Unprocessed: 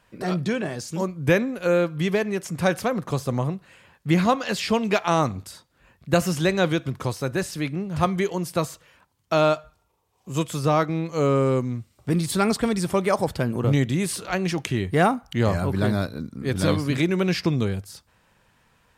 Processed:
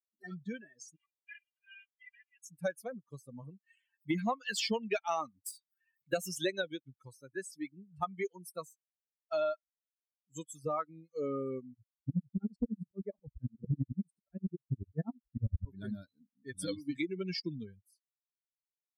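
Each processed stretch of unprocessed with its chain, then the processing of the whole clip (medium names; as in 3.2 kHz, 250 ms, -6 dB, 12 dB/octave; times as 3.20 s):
0.96–2.43 s: CVSD coder 16 kbps + Bessel high-pass 2.2 kHz, order 4 + comb 2.5 ms, depth 89%
3.43–6.62 s: high-pass 170 Hz 6 dB/octave + waveshaping leveller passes 1 + upward compressor, threshold -23 dBFS
11.74–15.65 s: tilt EQ -4 dB/octave + sawtooth tremolo in dB swelling 11 Hz, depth 30 dB
whole clip: expander on every frequency bin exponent 3; compression 4:1, threshold -31 dBFS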